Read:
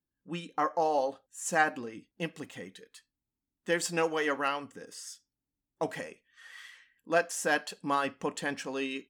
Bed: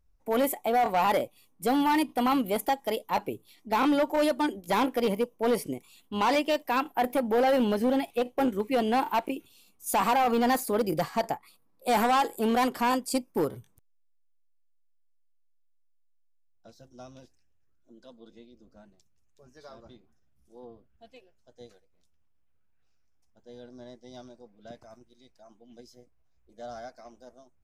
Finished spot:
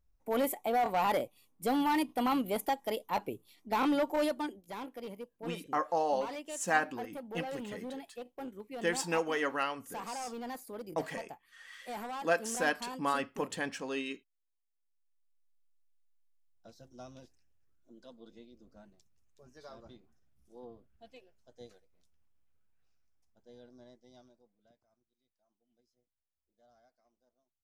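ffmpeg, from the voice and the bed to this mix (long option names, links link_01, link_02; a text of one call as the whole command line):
ffmpeg -i stem1.wav -i stem2.wav -filter_complex "[0:a]adelay=5150,volume=-2.5dB[link_01];[1:a]volume=9.5dB,afade=type=out:start_time=4.18:duration=0.49:silence=0.251189,afade=type=in:start_time=14.73:duration=0.84:silence=0.188365,afade=type=out:start_time=22.36:duration=2.42:silence=0.0630957[link_02];[link_01][link_02]amix=inputs=2:normalize=0" out.wav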